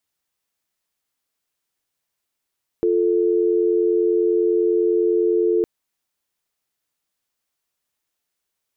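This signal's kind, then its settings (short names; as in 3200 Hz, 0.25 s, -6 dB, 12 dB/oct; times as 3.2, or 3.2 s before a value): call progress tone dial tone, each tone -18 dBFS 2.81 s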